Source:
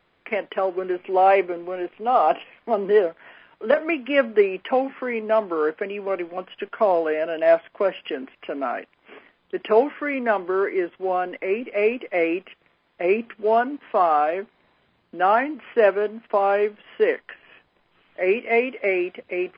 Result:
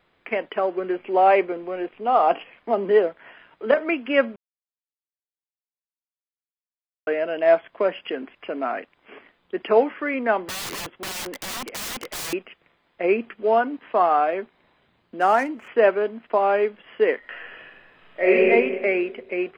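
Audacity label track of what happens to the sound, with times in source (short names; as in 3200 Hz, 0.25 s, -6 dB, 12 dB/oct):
4.360000	7.070000	mute
10.440000	12.330000	wrapped overs gain 26.5 dB
15.200000	15.680000	median filter over 9 samples
17.180000	18.480000	reverb throw, RT60 1.6 s, DRR -5 dB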